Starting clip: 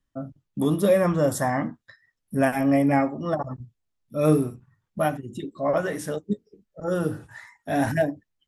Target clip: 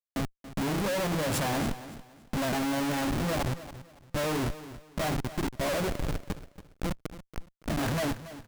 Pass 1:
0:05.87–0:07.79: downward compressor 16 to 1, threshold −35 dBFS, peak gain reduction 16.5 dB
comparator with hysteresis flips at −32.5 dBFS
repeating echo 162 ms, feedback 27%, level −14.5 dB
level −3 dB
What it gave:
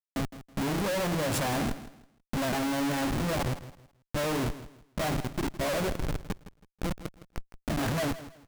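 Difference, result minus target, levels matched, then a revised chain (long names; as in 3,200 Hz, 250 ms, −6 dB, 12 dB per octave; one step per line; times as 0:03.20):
echo 119 ms early
0:05.87–0:07.79: downward compressor 16 to 1, threshold −35 dBFS, peak gain reduction 16.5 dB
comparator with hysteresis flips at −32.5 dBFS
repeating echo 281 ms, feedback 27%, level −14.5 dB
level −3 dB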